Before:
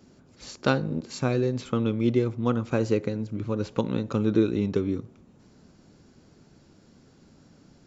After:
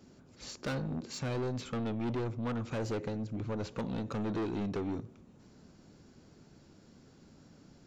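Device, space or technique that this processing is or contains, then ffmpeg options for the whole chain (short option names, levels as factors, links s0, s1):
saturation between pre-emphasis and de-emphasis: -af "highshelf=f=6500:g=7.5,asoftclip=type=tanh:threshold=0.0376,highshelf=f=6500:g=-7.5,volume=0.75"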